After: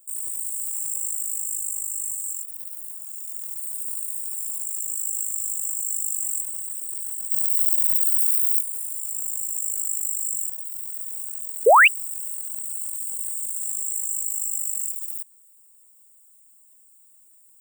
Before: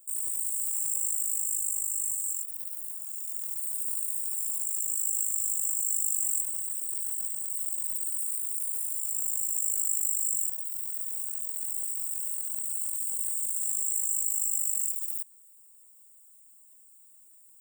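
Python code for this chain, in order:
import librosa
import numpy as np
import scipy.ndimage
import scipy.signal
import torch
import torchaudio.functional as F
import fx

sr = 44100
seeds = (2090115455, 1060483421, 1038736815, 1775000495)

y = fx.high_shelf(x, sr, hz=9900.0, db=12.0, at=(7.31, 8.61))
y = fx.spec_paint(y, sr, seeds[0], shape='rise', start_s=11.66, length_s=0.22, low_hz=410.0, high_hz=3000.0, level_db=-13.0)
y = F.gain(torch.from_numpy(y), 1.5).numpy()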